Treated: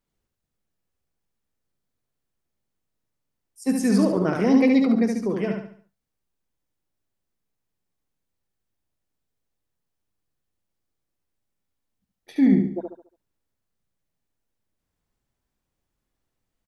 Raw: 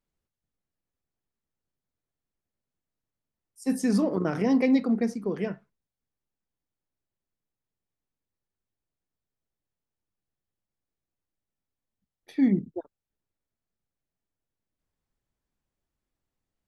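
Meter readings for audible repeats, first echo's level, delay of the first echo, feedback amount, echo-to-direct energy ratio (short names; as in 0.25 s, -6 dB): 4, -4.0 dB, 71 ms, 38%, -3.5 dB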